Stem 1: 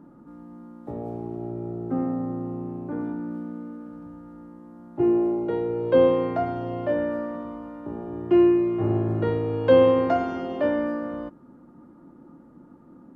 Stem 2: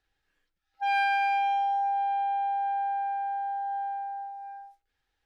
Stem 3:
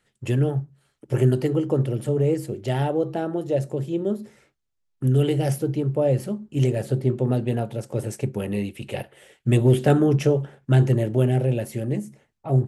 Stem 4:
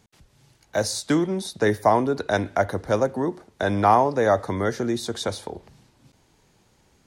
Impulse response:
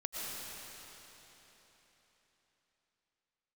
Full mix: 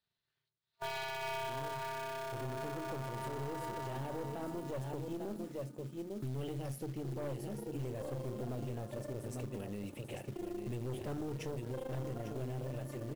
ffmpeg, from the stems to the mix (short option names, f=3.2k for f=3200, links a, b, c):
-filter_complex "[0:a]tremolo=f=26:d=1,adelay=2050,volume=-16dB,asplit=2[a][b];[b]volume=-5.5dB[c];[1:a]agate=range=-9dB:threshold=-40dB:ratio=16:detection=peak,lowpass=f=4.1k:t=q:w=5.1,aeval=exprs='val(0)*sgn(sin(2*PI*130*n/s))':c=same,volume=-4dB,asplit=2[d][e];[e]volume=-11.5dB[f];[2:a]dynaudnorm=f=160:g=13:m=11dB,acrusher=bits=7:mix=0:aa=0.000001,adelay=1200,volume=-15.5dB,asplit=2[g][h];[h]volume=-8.5dB[i];[4:a]atrim=start_sample=2205[j];[c][j]afir=irnorm=-1:irlink=0[k];[f][i]amix=inputs=2:normalize=0,aecho=0:1:849:1[l];[a][d][g][k][l]amix=inputs=5:normalize=0,aeval=exprs='(tanh(17.8*val(0)+0.5)-tanh(0.5))/17.8':c=same,acrusher=bits=5:mode=log:mix=0:aa=0.000001,alimiter=level_in=8.5dB:limit=-24dB:level=0:latency=1:release=103,volume=-8.5dB"